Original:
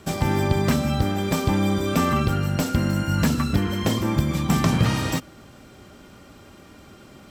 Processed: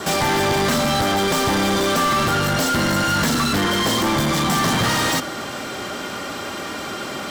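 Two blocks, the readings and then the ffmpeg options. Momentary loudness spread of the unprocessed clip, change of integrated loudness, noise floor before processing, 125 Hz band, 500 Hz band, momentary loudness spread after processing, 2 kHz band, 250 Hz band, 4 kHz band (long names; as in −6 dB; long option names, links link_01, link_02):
3 LU, +3.0 dB, −48 dBFS, −3.5 dB, +5.5 dB, 10 LU, +9.5 dB, +1.0 dB, +11.0 dB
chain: -filter_complex "[0:a]asplit=2[link_01][link_02];[link_02]highpass=frequency=720:poles=1,volume=35dB,asoftclip=type=tanh:threshold=-7.5dB[link_03];[link_01][link_03]amix=inputs=2:normalize=0,lowpass=frequency=6600:poles=1,volume=-6dB,adynamicequalizer=threshold=0.0141:dfrequency=2500:dqfactor=5.9:tfrequency=2500:tqfactor=5.9:attack=5:release=100:ratio=0.375:range=3.5:mode=cutabove:tftype=bell,acrusher=bits=9:mode=log:mix=0:aa=0.000001,volume=-4.5dB"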